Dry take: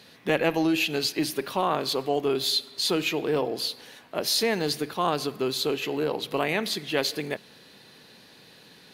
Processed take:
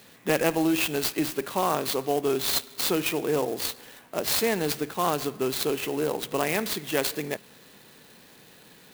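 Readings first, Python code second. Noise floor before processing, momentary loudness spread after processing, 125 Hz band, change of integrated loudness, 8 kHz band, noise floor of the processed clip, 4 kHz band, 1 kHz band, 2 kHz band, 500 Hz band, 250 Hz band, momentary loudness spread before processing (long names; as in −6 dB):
−53 dBFS, 6 LU, 0.0 dB, 0.0 dB, +3.5 dB, −53 dBFS, −4.0 dB, 0.0 dB, −1.0 dB, 0.0 dB, 0.0 dB, 6 LU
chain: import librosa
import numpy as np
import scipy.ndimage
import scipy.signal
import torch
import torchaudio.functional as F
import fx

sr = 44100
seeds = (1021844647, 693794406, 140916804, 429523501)

y = fx.clock_jitter(x, sr, seeds[0], jitter_ms=0.043)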